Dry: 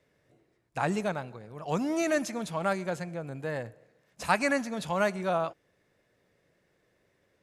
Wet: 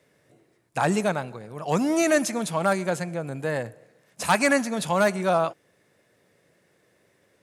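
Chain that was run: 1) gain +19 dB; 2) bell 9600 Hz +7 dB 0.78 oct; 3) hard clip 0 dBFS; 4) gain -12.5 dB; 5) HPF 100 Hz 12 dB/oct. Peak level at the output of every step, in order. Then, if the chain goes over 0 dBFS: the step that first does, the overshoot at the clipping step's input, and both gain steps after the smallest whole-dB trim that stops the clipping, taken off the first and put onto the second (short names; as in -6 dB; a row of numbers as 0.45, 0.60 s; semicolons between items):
+8.0, +8.5, 0.0, -12.5, -9.5 dBFS; step 1, 8.5 dB; step 1 +10 dB, step 4 -3.5 dB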